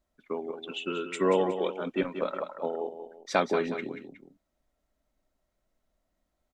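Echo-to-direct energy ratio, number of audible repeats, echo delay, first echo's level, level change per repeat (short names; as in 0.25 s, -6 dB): -9.0 dB, 2, 0.183 s, -9.5 dB, -7.5 dB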